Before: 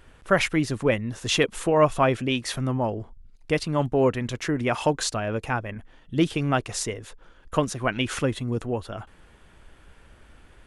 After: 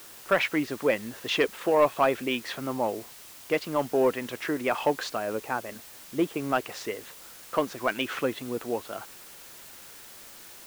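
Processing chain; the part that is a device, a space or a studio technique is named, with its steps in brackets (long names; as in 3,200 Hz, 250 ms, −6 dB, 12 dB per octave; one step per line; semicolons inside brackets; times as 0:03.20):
0:05.17–0:06.53: low-pass filter 1,400 Hz 6 dB per octave
tape answering machine (band-pass filter 310–3,200 Hz; soft clipping −11.5 dBFS, distortion −18 dB; tape wow and flutter; white noise bed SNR 18 dB)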